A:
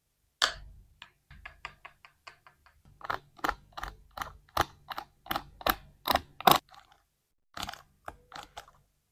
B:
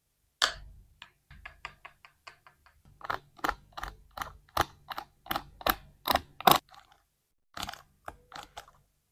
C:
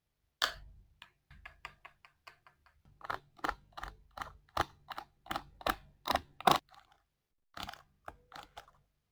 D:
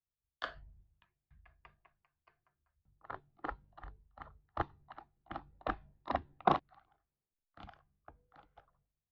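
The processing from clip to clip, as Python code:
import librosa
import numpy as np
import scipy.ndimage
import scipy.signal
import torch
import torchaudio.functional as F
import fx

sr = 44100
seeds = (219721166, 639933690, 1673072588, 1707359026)

y1 = fx.peak_eq(x, sr, hz=11000.0, db=2.0, octaves=0.77)
y2 = scipy.ndimage.median_filter(y1, 5, mode='constant')
y2 = y2 * librosa.db_to_amplitude(-5.0)
y3 = fx.spacing_loss(y2, sr, db_at_10k=44)
y3 = fx.band_widen(y3, sr, depth_pct=40)
y3 = y3 * librosa.db_to_amplitude(-1.5)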